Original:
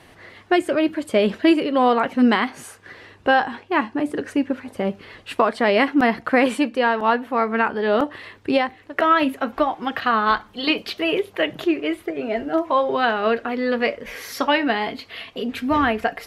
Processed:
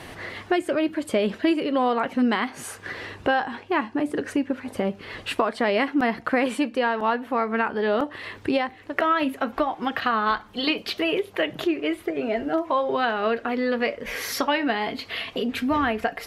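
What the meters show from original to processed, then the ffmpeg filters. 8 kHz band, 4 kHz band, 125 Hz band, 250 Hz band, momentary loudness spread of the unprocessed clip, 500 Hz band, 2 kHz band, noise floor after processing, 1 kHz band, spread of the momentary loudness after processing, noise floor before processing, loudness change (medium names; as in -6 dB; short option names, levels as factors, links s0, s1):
no reading, -2.5 dB, -2.5 dB, -3.5 dB, 10 LU, -3.5 dB, -3.5 dB, -46 dBFS, -4.5 dB, 6 LU, -50 dBFS, -4.0 dB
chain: -af "acompressor=threshold=0.0112:ratio=2,volume=2.66"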